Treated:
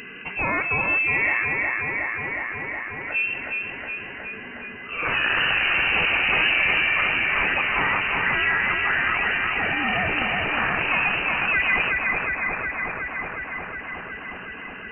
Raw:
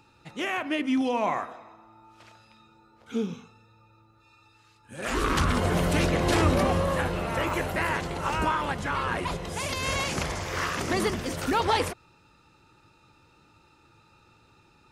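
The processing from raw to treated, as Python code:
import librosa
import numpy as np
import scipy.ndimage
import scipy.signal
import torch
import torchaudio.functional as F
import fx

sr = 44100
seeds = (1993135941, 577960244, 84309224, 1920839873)

y = fx.low_shelf(x, sr, hz=110.0, db=-10.5)
y = fx.echo_thinned(y, sr, ms=365, feedback_pct=69, hz=420.0, wet_db=-4)
y = fx.freq_invert(y, sr, carrier_hz=2900)
y = fx.env_flatten(y, sr, amount_pct=50)
y = F.gain(torch.from_numpy(y), 2.0).numpy()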